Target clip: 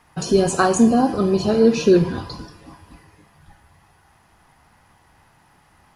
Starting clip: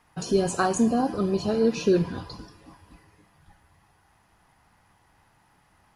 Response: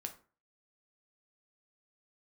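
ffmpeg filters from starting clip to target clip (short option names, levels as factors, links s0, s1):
-filter_complex "[0:a]asplit=2[s0][s1];[1:a]atrim=start_sample=2205,asetrate=32193,aresample=44100[s2];[s1][s2]afir=irnorm=-1:irlink=0,volume=0.75[s3];[s0][s3]amix=inputs=2:normalize=0,volume=1.33"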